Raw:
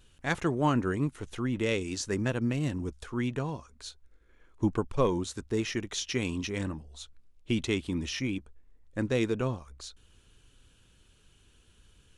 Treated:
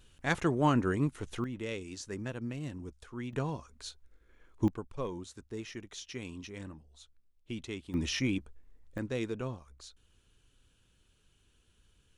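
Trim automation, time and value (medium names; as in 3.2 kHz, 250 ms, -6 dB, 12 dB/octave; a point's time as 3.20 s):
-0.5 dB
from 1.44 s -9 dB
from 3.33 s -1 dB
from 4.68 s -11 dB
from 7.94 s +1 dB
from 8.98 s -7 dB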